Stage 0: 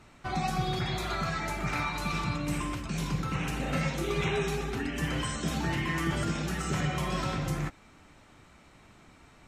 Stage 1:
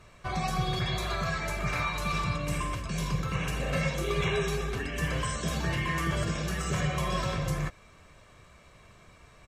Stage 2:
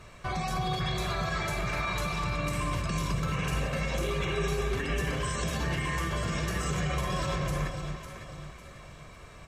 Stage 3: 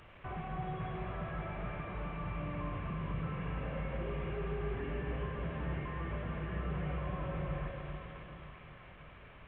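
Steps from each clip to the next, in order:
comb filter 1.8 ms, depth 58%
brickwall limiter −28 dBFS, peak gain reduction 11 dB; delay that swaps between a low-pass and a high-pass 276 ms, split 1,300 Hz, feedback 63%, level −5 dB; level +4.5 dB
linear delta modulator 16 kbit/s, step −42.5 dBFS; convolution reverb RT60 3.2 s, pre-delay 47 ms, DRR 6 dB; level −8 dB

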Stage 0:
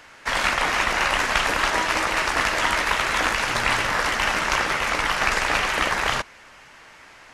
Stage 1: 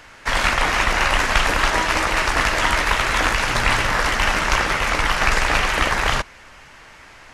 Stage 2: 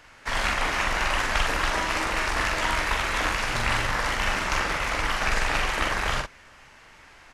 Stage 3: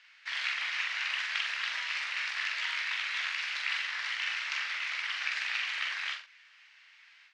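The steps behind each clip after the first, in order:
low-shelf EQ 100 Hz +11.5 dB; level +2.5 dB
double-tracking delay 44 ms −4 dB; level −8 dB
flat-topped band-pass 3,000 Hz, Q 1; every ending faded ahead of time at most 150 dB per second; level −3 dB

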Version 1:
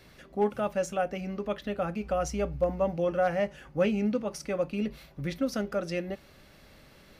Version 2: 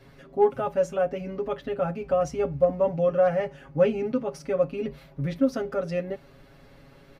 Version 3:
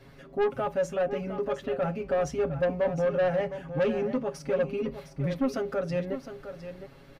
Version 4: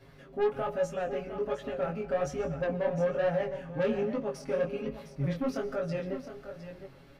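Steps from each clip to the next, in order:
high-shelf EQ 2,100 Hz −11 dB; comb filter 7.3 ms, depth 92%; level +2 dB
soft clipping −20.5 dBFS, distortion −11 dB; on a send: single-tap delay 709 ms −11 dB
convolution reverb RT60 0.70 s, pre-delay 85 ms, DRR 15 dB; chorus effect 1.2 Hz, delay 18 ms, depth 6 ms

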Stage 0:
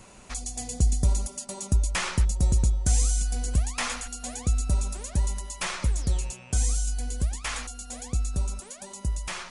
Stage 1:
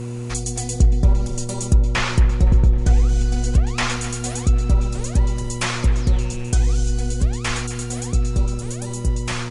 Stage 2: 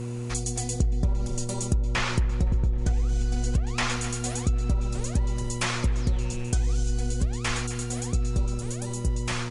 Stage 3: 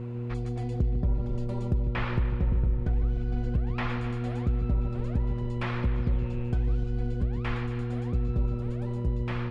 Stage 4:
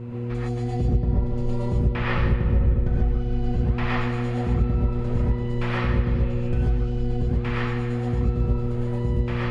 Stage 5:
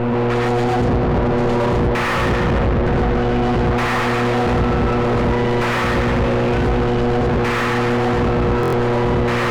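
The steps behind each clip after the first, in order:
echo with shifted repeats 259 ms, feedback 45%, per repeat −32 Hz, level −14 dB; treble cut that deepens with the level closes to 2,100 Hz, closed at −17.5 dBFS; hum with harmonics 120 Hz, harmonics 4, −36 dBFS −6 dB per octave; level +7.5 dB
downward compressor, threshold −16 dBFS, peak gain reduction 7.5 dB; level −4 dB
high-frequency loss of the air 430 metres; bucket-brigade delay 150 ms, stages 4,096, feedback 54%, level −11 dB; level −2.5 dB
reverb whose tail is shaped and stops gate 160 ms rising, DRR −5.5 dB
mid-hump overdrive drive 41 dB, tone 1,300 Hz, clips at −9.5 dBFS; buffer that repeats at 0:08.61, samples 1,024, times 4

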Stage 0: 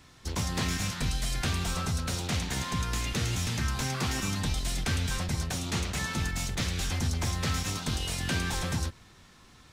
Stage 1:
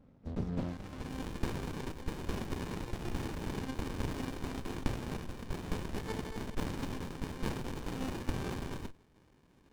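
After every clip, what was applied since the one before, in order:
dynamic equaliser 4,100 Hz, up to +6 dB, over −50 dBFS, Q 0.96
band-pass filter sweep 240 Hz → 2,700 Hz, 0:00.53–0:01.17
windowed peak hold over 65 samples
level +6 dB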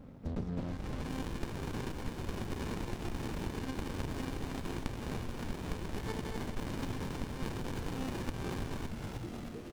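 on a send: echo with shifted repeats 313 ms, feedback 55%, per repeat −120 Hz, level −9.5 dB
on the sum: downward compressor 4 to 1, threshold −46 dBFS, peak gain reduction 17.5 dB
level +10 dB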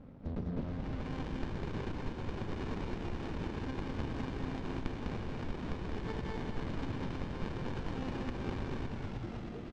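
high-frequency loss of the air 150 metres
single-tap delay 201 ms −4 dB
level −1 dB

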